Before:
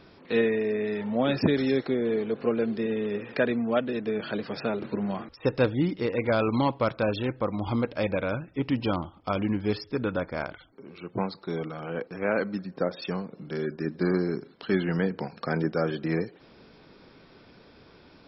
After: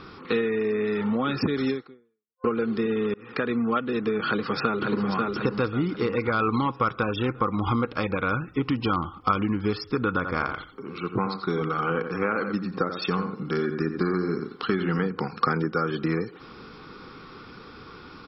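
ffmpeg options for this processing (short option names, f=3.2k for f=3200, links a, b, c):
-filter_complex "[0:a]asplit=2[a][b];[b]afade=t=in:st=4.27:d=0.01,afade=t=out:st=5.06:d=0.01,aecho=0:1:540|1080|1620|2160|2700|3240:0.630957|0.315479|0.157739|0.0788697|0.0394348|0.0197174[c];[a][c]amix=inputs=2:normalize=0,asettb=1/sr,asplit=3[d][e][f];[d]atrim=end=6.634[g];[e]atrim=start=6.63:end=7.85,asetpts=PTS-STARTPTS,afade=t=in:d=0.004:c=qsin,afade=t=out:st=1.216:d=0.004:c=qsin,asuperstop=centerf=4300:order=20:qfactor=6[h];[f]atrim=start=7.846[i];[g][h]acrossfade=d=0.004:c1=hsin:c2=qsin[j];[j][i]acrossfade=d=0.004:c1=qsin:c2=hsin,asplit=3[k][l][m];[k]afade=t=out:st=10.23:d=0.02[n];[l]asplit=2[o][p];[p]adelay=87,lowpass=f=3.5k:p=1,volume=-9dB,asplit=2[q][r];[r]adelay=87,lowpass=f=3.5k:p=1,volume=0.16[s];[o][q][s]amix=inputs=3:normalize=0,afade=t=in:st=10.23:d=0.02,afade=t=out:st=15.07:d=0.02[t];[m]afade=t=in:st=15.07:d=0.02[u];[n][t][u]amix=inputs=3:normalize=0,asplit=3[v][w][x];[v]atrim=end=2.44,asetpts=PTS-STARTPTS,afade=t=out:st=1.7:d=0.74:c=exp[y];[w]atrim=start=2.44:end=3.14,asetpts=PTS-STARTPTS,afade=t=in:d=0.004:c=hsin,afade=t=out:st=0.696:d=0.004:c=hsin[z];[x]atrim=start=3.14,asetpts=PTS-STARTPTS,afade=t=in:d=0.44[aa];[y][z][aa]concat=n=3:v=0:a=1,acompressor=threshold=-30dB:ratio=6,superequalizer=8b=0.355:10b=2.82,volume=8dB"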